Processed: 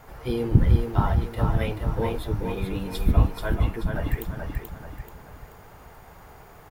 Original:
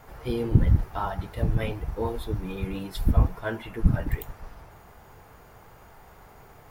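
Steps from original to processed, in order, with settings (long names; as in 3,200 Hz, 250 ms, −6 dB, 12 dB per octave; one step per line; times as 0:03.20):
0:03.32–0:03.96: downward compressor 2 to 1, threshold −29 dBFS, peak gain reduction 10 dB
repeating echo 433 ms, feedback 40%, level −5 dB
level +1.5 dB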